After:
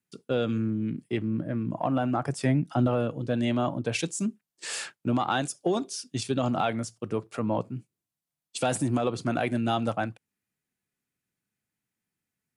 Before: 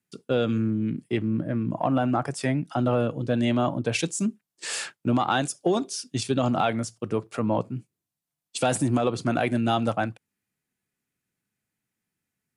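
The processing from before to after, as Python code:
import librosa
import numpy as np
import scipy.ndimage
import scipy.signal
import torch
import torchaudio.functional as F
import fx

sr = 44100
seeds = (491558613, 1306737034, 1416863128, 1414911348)

y = fx.low_shelf(x, sr, hz=350.0, db=6.5, at=(2.26, 2.87))
y = y * 10.0 ** (-3.0 / 20.0)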